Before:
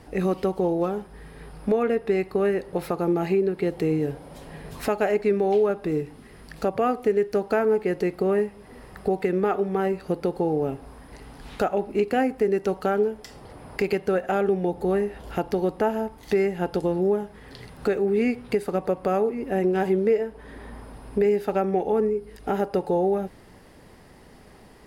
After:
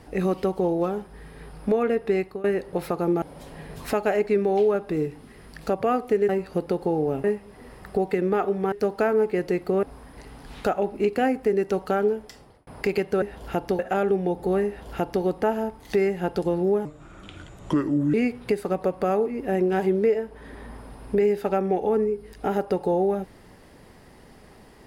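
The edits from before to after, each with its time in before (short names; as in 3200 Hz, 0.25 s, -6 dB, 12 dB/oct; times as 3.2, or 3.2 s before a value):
2.18–2.44 fade out, to -20 dB
3.22–4.17 cut
7.24–8.35 swap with 9.83–10.78
13.15–13.62 fade out linear
15.05–15.62 copy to 14.17
17.23–18.17 speed 73%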